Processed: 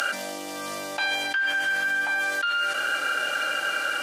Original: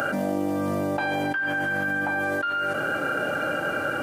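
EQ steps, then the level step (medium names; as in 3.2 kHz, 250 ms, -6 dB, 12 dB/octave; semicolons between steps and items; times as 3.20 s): band-pass filter 4.1 kHz, Q 0.93; treble shelf 3.9 kHz +8 dB; +8.5 dB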